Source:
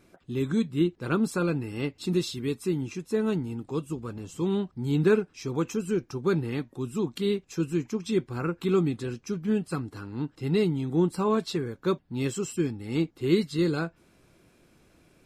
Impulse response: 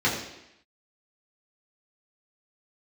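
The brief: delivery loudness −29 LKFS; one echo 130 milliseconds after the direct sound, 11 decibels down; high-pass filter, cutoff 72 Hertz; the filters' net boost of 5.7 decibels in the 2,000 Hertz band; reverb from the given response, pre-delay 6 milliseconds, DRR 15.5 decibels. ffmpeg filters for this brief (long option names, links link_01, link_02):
-filter_complex "[0:a]highpass=72,equalizer=frequency=2000:width_type=o:gain=8,aecho=1:1:130:0.282,asplit=2[link_01][link_02];[1:a]atrim=start_sample=2205,adelay=6[link_03];[link_02][link_03]afir=irnorm=-1:irlink=0,volume=-30dB[link_04];[link_01][link_04]amix=inputs=2:normalize=0,volume=-1dB"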